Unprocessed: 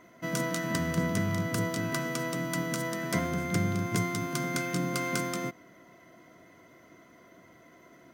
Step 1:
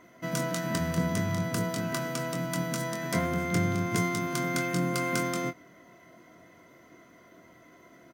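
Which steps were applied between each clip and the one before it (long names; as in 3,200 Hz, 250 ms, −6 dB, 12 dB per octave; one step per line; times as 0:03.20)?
double-tracking delay 23 ms −8 dB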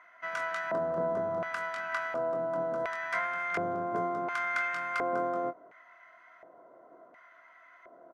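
flat-topped bell 1,000 Hz +14 dB
auto-filter band-pass square 0.7 Hz 450–2,200 Hz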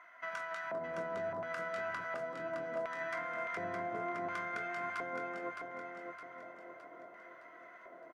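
downward compressor 5 to 1, threshold −38 dBFS, peak gain reduction 10.5 dB
flanger 0.4 Hz, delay 2.8 ms, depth 7.9 ms, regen +74%
repeating echo 614 ms, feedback 49%, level −5.5 dB
level +4 dB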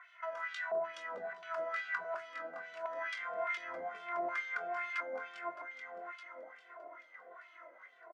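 parametric band 8,000 Hz +11 dB 2.5 octaves
auto-filter band-pass sine 2.3 Hz 550–3,400 Hz
barber-pole flanger 2.2 ms −1.5 Hz
level +7.5 dB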